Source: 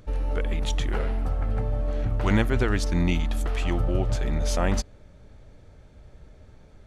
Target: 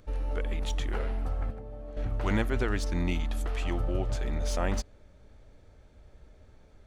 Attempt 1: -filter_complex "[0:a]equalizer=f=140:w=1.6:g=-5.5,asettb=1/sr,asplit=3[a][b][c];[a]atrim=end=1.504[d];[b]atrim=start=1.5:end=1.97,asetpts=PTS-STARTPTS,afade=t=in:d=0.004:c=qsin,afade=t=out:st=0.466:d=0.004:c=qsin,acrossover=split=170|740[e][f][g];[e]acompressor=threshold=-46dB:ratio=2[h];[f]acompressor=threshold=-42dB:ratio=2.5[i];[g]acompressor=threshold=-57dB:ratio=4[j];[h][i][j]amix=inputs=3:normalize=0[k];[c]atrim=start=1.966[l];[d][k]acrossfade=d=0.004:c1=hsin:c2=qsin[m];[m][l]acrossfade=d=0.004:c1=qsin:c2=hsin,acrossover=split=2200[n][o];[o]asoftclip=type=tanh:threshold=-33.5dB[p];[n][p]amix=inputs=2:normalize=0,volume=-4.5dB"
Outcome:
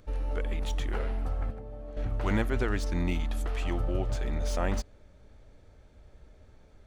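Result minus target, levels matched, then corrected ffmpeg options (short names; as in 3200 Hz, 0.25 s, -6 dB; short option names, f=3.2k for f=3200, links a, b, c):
soft clip: distortion +7 dB
-filter_complex "[0:a]equalizer=f=140:w=1.6:g=-5.5,asettb=1/sr,asplit=3[a][b][c];[a]atrim=end=1.504[d];[b]atrim=start=1.5:end=1.97,asetpts=PTS-STARTPTS,afade=t=in:d=0.004:c=qsin,afade=t=out:st=0.466:d=0.004:c=qsin,acrossover=split=170|740[e][f][g];[e]acompressor=threshold=-46dB:ratio=2[h];[f]acompressor=threshold=-42dB:ratio=2.5[i];[g]acompressor=threshold=-57dB:ratio=4[j];[h][i][j]amix=inputs=3:normalize=0[k];[c]atrim=start=1.966[l];[d][k]acrossfade=d=0.004:c1=hsin:c2=qsin[m];[m][l]acrossfade=d=0.004:c1=qsin:c2=hsin,acrossover=split=2200[n][o];[o]asoftclip=type=tanh:threshold=-26.5dB[p];[n][p]amix=inputs=2:normalize=0,volume=-4.5dB"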